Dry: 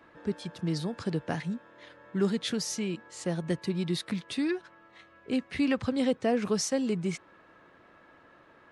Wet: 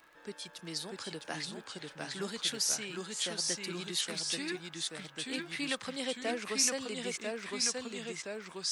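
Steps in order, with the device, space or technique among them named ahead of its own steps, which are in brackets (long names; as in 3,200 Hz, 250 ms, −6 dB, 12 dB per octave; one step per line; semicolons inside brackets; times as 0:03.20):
high-pass filter 210 Hz 6 dB per octave
spectral tilt +3.5 dB per octave
delay with pitch and tempo change per echo 625 ms, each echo −1 semitone, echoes 2
vinyl LP (surface crackle 32 per second −43 dBFS; pink noise bed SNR 42 dB)
level −5 dB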